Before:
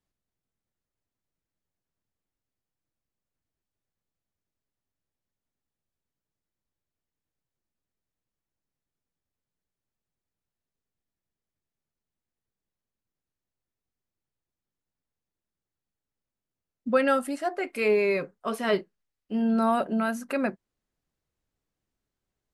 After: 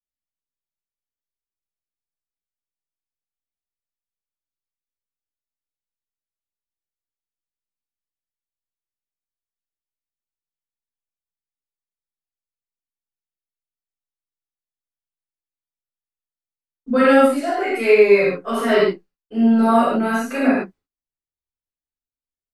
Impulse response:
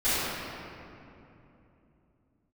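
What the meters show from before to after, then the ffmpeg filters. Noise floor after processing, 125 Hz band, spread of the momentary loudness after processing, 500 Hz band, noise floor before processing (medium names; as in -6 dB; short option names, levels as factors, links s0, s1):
under -85 dBFS, no reading, 10 LU, +10.5 dB, under -85 dBFS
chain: -filter_complex "[0:a]agate=range=0.0355:threshold=0.00224:ratio=16:detection=peak[s0];[1:a]atrim=start_sample=2205,afade=t=out:st=0.21:d=0.01,atrim=end_sample=9702[s1];[s0][s1]afir=irnorm=-1:irlink=0,volume=0.708"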